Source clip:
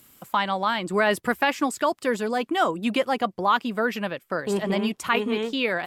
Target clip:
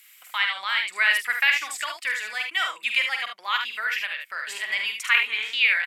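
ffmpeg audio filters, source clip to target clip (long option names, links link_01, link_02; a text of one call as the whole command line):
ffmpeg -i in.wav -af "highpass=frequency=2100:width_type=q:width=3.2,aecho=1:1:47|74:0.422|0.473" out.wav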